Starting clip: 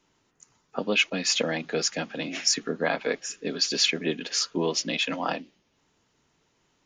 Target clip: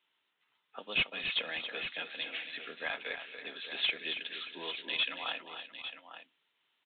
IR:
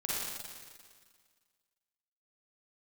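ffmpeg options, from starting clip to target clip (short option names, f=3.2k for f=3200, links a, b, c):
-af "aderivative,aresample=8000,volume=30dB,asoftclip=hard,volume=-30dB,aresample=44100,aecho=1:1:238|277|580|852:0.106|0.355|0.15|0.282,volume=5.5dB"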